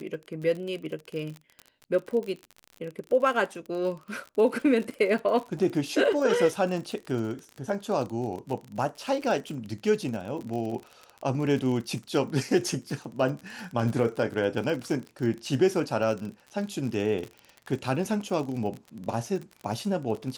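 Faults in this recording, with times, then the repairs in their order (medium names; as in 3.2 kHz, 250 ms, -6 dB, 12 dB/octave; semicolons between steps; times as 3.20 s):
crackle 41 per s -33 dBFS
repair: de-click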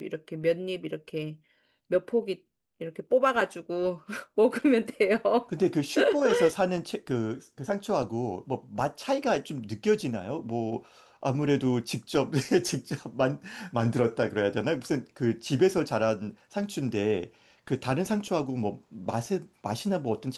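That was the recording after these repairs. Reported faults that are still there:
nothing left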